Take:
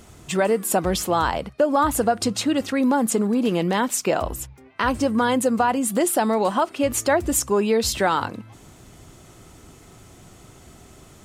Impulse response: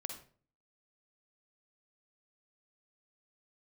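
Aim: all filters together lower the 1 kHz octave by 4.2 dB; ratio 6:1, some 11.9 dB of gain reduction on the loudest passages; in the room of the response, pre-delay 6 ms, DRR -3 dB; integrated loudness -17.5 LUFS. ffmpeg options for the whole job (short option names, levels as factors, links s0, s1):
-filter_complex "[0:a]equalizer=f=1000:t=o:g=-5.5,acompressor=threshold=0.0316:ratio=6,asplit=2[s0][s1];[1:a]atrim=start_sample=2205,adelay=6[s2];[s1][s2]afir=irnorm=-1:irlink=0,volume=1.68[s3];[s0][s3]amix=inputs=2:normalize=0,volume=3.55"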